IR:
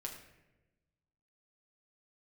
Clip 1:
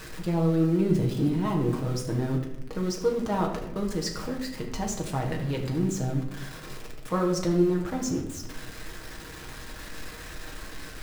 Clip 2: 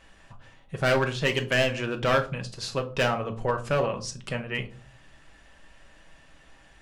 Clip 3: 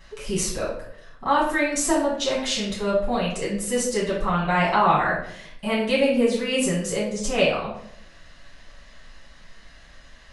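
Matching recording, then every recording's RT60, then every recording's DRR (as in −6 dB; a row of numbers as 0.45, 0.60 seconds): 1; non-exponential decay, 0.40 s, 0.70 s; −0.5, 4.0, −7.5 decibels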